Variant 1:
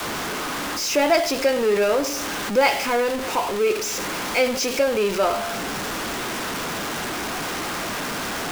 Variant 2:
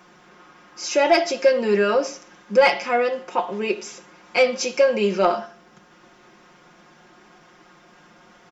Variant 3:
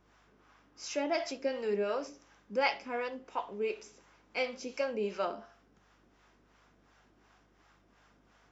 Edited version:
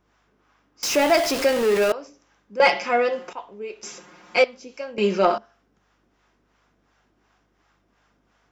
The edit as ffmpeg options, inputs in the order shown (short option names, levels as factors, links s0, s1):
-filter_complex "[1:a]asplit=3[s0][s1][s2];[2:a]asplit=5[s3][s4][s5][s6][s7];[s3]atrim=end=0.832[s8];[0:a]atrim=start=0.828:end=1.922[s9];[s4]atrim=start=1.918:end=2.602[s10];[s0]atrim=start=2.598:end=3.332[s11];[s5]atrim=start=3.328:end=3.832[s12];[s1]atrim=start=3.828:end=4.442[s13];[s6]atrim=start=4.438:end=4.982[s14];[s2]atrim=start=4.978:end=5.382[s15];[s7]atrim=start=5.378[s16];[s8][s9]acrossfade=d=0.004:c1=hsin:c2=hsin[s17];[s17][s10]acrossfade=d=0.004:c1=hsin:c2=hsin[s18];[s18][s11]acrossfade=d=0.004:c1=hsin:c2=hsin[s19];[s19][s12]acrossfade=d=0.004:c1=hsin:c2=hsin[s20];[s20][s13]acrossfade=d=0.004:c1=hsin:c2=hsin[s21];[s21][s14]acrossfade=d=0.004:c1=hsin:c2=hsin[s22];[s22][s15]acrossfade=d=0.004:c1=hsin:c2=hsin[s23];[s23][s16]acrossfade=d=0.004:c1=hsin:c2=hsin"